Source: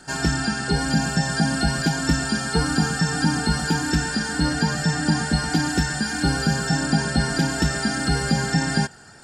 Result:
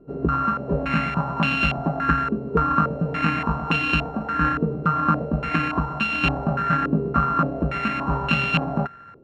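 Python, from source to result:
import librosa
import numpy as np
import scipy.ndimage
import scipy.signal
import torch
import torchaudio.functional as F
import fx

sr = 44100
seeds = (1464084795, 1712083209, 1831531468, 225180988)

y = np.r_[np.sort(x[:len(x) // 32 * 32].reshape(-1, 32), axis=1).ravel(), x[len(x) // 32 * 32:]]
y = fx.filter_held_lowpass(y, sr, hz=3.5, low_hz=430.0, high_hz=2800.0)
y = y * 10.0 ** (-2.5 / 20.0)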